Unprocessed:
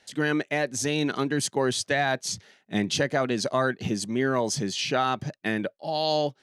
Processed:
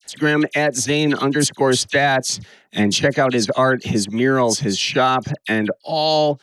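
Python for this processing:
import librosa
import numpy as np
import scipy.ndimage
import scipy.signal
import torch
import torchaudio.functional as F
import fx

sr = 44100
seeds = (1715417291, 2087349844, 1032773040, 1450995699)

y = fx.dispersion(x, sr, late='lows', ms=45.0, hz=2500.0)
y = F.gain(torch.from_numpy(y), 8.5).numpy()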